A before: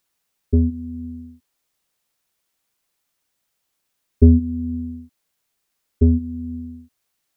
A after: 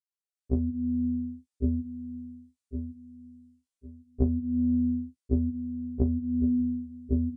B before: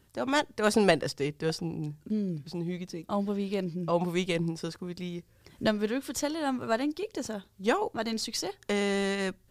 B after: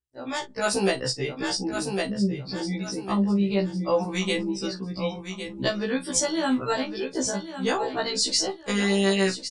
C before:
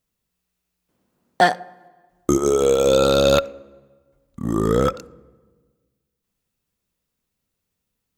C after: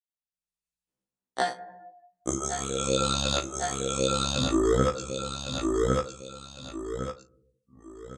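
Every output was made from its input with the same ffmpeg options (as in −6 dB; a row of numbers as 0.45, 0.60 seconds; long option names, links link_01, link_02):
-filter_complex "[0:a]afftdn=noise_reduction=28:noise_floor=-45,aecho=1:1:1106|2212|3318:0.237|0.0759|0.0243,aresample=22050,aresample=44100,highshelf=frequency=3400:gain=8,acompressor=threshold=-25dB:ratio=8,asplit=2[link_01][link_02];[link_02]adelay=39,volume=-13dB[link_03];[link_01][link_03]amix=inputs=2:normalize=0,dynaudnorm=framelen=170:gausssize=5:maxgain=14.5dB,highshelf=frequency=7700:gain=3,afftfilt=real='re*1.73*eq(mod(b,3),0)':imag='im*1.73*eq(mod(b,3),0)':win_size=2048:overlap=0.75,volume=-5.5dB"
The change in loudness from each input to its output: −10.0, +4.5, −9.5 LU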